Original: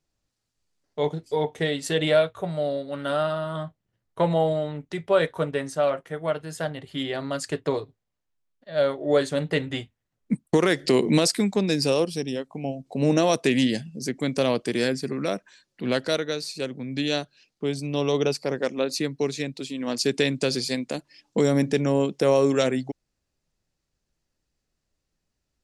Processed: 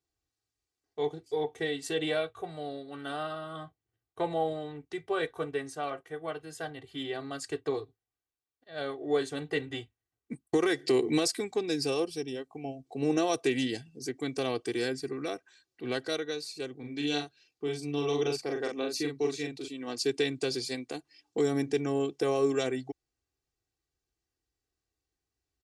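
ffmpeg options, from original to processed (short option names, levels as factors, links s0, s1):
-filter_complex "[0:a]asettb=1/sr,asplit=3[s0][s1][s2];[s0]atrim=end=16.774[s3];[s1]atrim=start=16.77:end=19.68,asetpts=PTS-STARTPTS,afade=t=in:d=0.004:c=qsin,afade=t=out:st=2.906:d=0.004:c=qsin,asplit=2[s4][s5];[s5]adelay=41,volume=0.631[s6];[s4][s6]amix=inputs=2:normalize=0,atrim=end_sample=128331[s7];[s2]atrim=start=19.676[s8];[s3][s7]acrossfade=d=0.004:c1=hsin:c2=qsin[s9];[s9][s8]acrossfade=d=0.004:c1=qsin:c2=hsin,highpass=51,aecho=1:1:2.6:0.8,volume=0.355"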